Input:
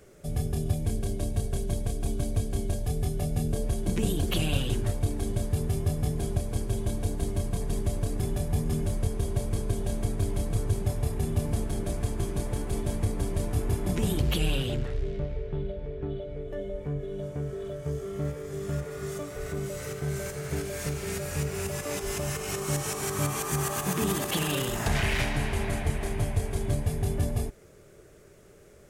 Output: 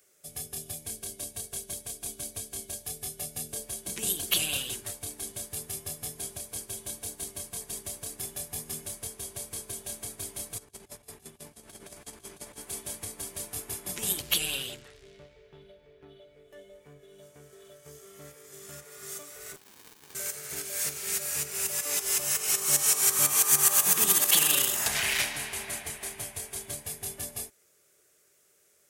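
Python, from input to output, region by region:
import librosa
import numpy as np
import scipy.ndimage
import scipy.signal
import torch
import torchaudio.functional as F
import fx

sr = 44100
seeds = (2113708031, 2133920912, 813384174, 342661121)

y = fx.chain(x, sr, fx.high_shelf(hz=6800.0, db=-8.5),
    fx.over_compress(threshold_db=-31.0, ratio=-0.5), at=(10.58, 12.61))
y = fx.chain(y, sr, fx.weighting(curve='ITU-R 468'),
    fx.running_max(window=65), at=(19.56, 20.15))
y = fx.tilt_eq(y, sr, slope=4.5)
y = fx.upward_expand(y, sr, threshold_db=-45.0, expansion=1.5)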